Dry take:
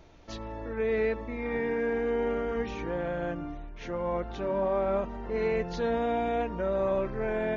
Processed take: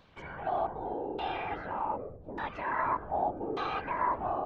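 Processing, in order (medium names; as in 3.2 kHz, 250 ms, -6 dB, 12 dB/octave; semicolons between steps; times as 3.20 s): wide varispeed 1.7×; LFO low-pass saw down 0.84 Hz 350–3800 Hz; whisper effect; trim -6.5 dB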